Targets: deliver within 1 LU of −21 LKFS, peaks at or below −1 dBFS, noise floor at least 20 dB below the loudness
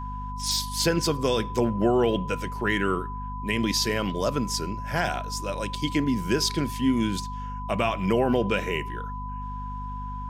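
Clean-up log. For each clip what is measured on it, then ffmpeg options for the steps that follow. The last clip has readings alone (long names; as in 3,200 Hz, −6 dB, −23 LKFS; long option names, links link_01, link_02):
mains hum 50 Hz; hum harmonics up to 250 Hz; level of the hum −33 dBFS; interfering tone 1,000 Hz; level of the tone −35 dBFS; integrated loudness −26.5 LKFS; sample peak −10.0 dBFS; target loudness −21.0 LKFS
→ -af "bandreject=frequency=50:width_type=h:width=6,bandreject=frequency=100:width_type=h:width=6,bandreject=frequency=150:width_type=h:width=6,bandreject=frequency=200:width_type=h:width=6,bandreject=frequency=250:width_type=h:width=6"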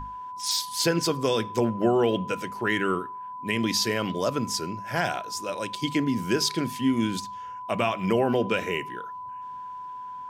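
mains hum none found; interfering tone 1,000 Hz; level of the tone −35 dBFS
→ -af "bandreject=frequency=1000:width=30"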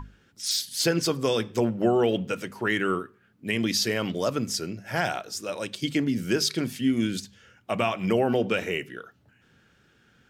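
interfering tone none found; integrated loudness −26.5 LKFS; sample peak −10.5 dBFS; target loudness −21.0 LKFS
→ -af "volume=5.5dB"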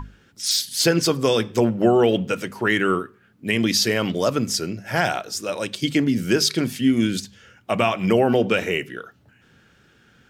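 integrated loudness −21.0 LKFS; sample peak −5.0 dBFS; background noise floor −57 dBFS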